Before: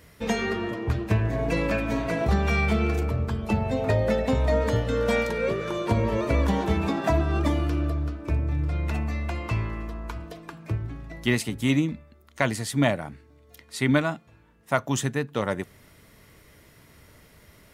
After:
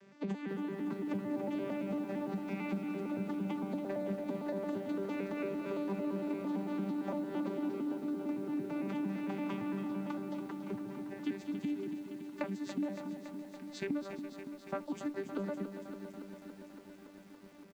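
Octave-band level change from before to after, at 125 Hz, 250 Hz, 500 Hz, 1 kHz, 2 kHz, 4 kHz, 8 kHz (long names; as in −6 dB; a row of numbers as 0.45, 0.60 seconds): −20.5 dB, −7.0 dB, −12.5 dB, −14.5 dB, −18.0 dB, −18.5 dB, below −20 dB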